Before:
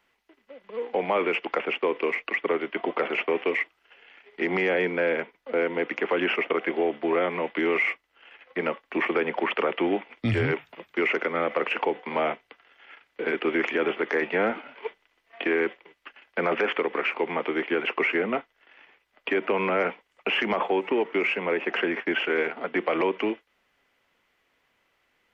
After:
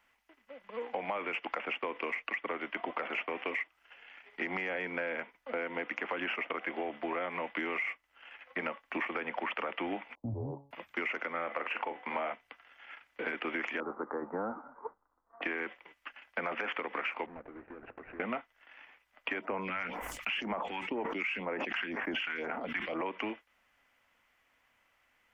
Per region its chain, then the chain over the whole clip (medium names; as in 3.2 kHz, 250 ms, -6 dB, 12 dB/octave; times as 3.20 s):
10.15–10.71 s: steep low-pass 970 Hz 72 dB/octave + feedback comb 140 Hz, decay 0.46 s
11.33–12.33 s: tone controls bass -4 dB, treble -8 dB + doubling 41 ms -10.5 dB
13.80–15.42 s: steep low-pass 1.3 kHz 48 dB/octave + peaking EQ 650 Hz -7 dB 0.32 oct
17.26–18.20 s: median filter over 41 samples + low-pass 2.1 kHz 24 dB/octave + compression 4:1, threshold -40 dBFS
19.41–23.06 s: phase shifter stages 2, 2 Hz, lowest notch 420–4100 Hz + decay stretcher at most 41 dB/s
whole clip: fifteen-band graphic EQ 160 Hz -7 dB, 400 Hz -11 dB, 4 kHz -6 dB; compression, threshold -32 dBFS